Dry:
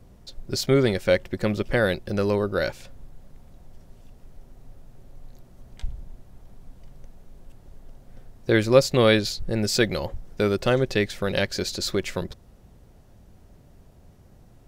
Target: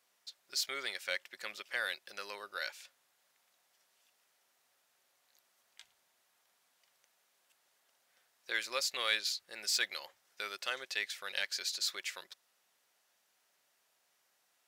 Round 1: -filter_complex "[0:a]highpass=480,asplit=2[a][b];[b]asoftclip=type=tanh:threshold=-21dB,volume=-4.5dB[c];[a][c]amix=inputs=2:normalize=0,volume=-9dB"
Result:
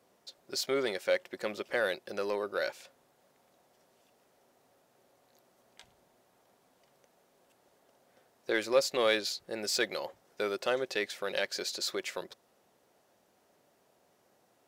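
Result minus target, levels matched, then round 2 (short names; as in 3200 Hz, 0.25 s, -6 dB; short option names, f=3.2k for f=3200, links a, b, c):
500 Hz band +13.0 dB
-filter_complex "[0:a]highpass=1.6k,asplit=2[a][b];[b]asoftclip=type=tanh:threshold=-21dB,volume=-4.5dB[c];[a][c]amix=inputs=2:normalize=0,volume=-9dB"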